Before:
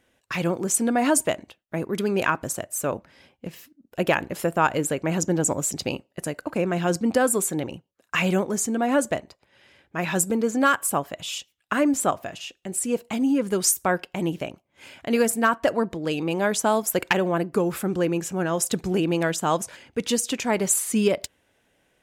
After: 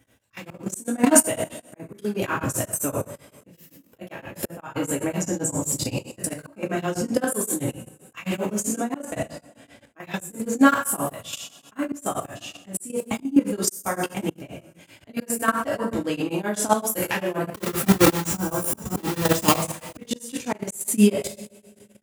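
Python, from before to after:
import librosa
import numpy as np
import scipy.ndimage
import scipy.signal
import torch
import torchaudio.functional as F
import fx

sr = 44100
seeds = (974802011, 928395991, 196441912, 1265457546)

y = fx.halfwave_hold(x, sr, at=(17.5, 19.55))
y = fx.high_shelf(y, sr, hz=9000.0, db=10.0)
y = fx.spec_repair(y, sr, seeds[0], start_s=18.35, length_s=0.59, low_hz=1600.0, high_hz=8500.0, source='before')
y = fx.low_shelf(y, sr, hz=200.0, db=10.0)
y = fx.rev_double_slope(y, sr, seeds[1], early_s=0.53, late_s=2.1, knee_db=-21, drr_db=-4.0)
y = fx.auto_swell(y, sr, attack_ms=325.0)
y = fx.level_steps(y, sr, step_db=12)
y = scipy.signal.sosfilt(scipy.signal.butter(2, 75.0, 'highpass', fs=sr, output='sos'), y)
y = y * np.abs(np.cos(np.pi * 7.7 * np.arange(len(y)) / sr))
y = y * 10.0 ** (1.0 / 20.0)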